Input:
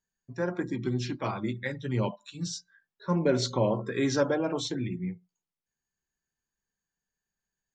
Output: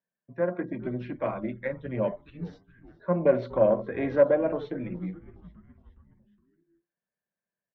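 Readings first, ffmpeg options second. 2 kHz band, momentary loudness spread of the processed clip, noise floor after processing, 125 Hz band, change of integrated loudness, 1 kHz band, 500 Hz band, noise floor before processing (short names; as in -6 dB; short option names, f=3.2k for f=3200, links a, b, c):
-2.0 dB, 16 LU, under -85 dBFS, -4.0 dB, +2.5 dB, -0.5 dB, +5.5 dB, under -85 dBFS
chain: -filter_complex "[0:a]aeval=exprs='0.211*(cos(1*acos(clip(val(0)/0.211,-1,1)))-cos(1*PI/2))+0.0596*(cos(2*acos(clip(val(0)/0.211,-1,1)))-cos(2*PI/2))':c=same,highpass=210,equalizer=f=270:t=q:w=4:g=-5,equalizer=f=400:t=q:w=4:g=-7,equalizer=f=590:t=q:w=4:g=7,equalizer=f=850:t=q:w=4:g=-9,equalizer=f=1.3k:t=q:w=4:g=-8,equalizer=f=1.8k:t=q:w=4:g=-5,lowpass=f=2k:w=0.5412,lowpass=f=2k:w=1.3066,asplit=5[a][b][c][d][e];[b]adelay=417,afreqshift=-130,volume=-20.5dB[f];[c]adelay=834,afreqshift=-260,volume=-25.4dB[g];[d]adelay=1251,afreqshift=-390,volume=-30.3dB[h];[e]adelay=1668,afreqshift=-520,volume=-35.1dB[i];[a][f][g][h][i]amix=inputs=5:normalize=0,volume=4dB"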